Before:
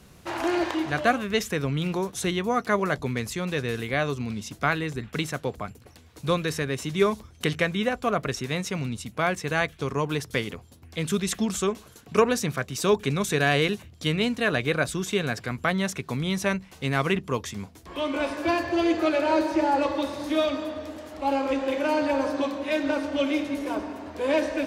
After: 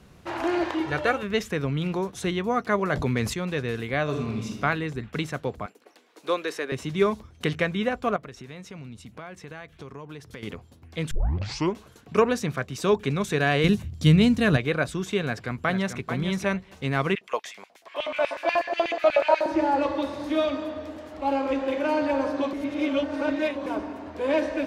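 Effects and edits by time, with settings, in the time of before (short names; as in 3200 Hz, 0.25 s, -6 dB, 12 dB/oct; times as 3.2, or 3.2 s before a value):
0.8–1.23 comb 2.2 ms
2.9–3.34 fast leveller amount 70%
4.03–4.6 reverb throw, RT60 0.95 s, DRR 0.5 dB
5.66–6.72 HPF 310 Hz 24 dB/oct
8.16–10.43 compressor 3:1, threshold -40 dBFS
11.11 tape start 0.63 s
13.64–14.57 tone controls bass +14 dB, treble +9 dB
15.24–16 echo throw 0.44 s, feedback 15%, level -8.5 dB
17.15–19.46 LFO high-pass square 8.2 Hz 640–2300 Hz
22.53–23.66 reverse
whole clip: high shelf 5100 Hz -10 dB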